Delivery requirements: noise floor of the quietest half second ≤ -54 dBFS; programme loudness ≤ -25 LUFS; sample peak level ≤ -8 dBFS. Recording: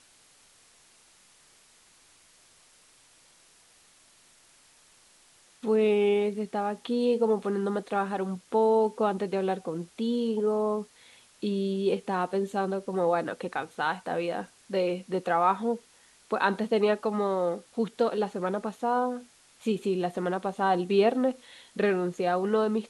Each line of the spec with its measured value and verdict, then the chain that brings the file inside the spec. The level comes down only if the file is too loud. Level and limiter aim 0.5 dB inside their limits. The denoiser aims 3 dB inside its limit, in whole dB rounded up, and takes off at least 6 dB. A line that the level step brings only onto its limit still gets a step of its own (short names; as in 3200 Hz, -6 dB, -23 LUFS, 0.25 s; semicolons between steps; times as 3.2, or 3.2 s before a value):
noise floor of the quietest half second -60 dBFS: OK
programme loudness -28.0 LUFS: OK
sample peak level -10.0 dBFS: OK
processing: none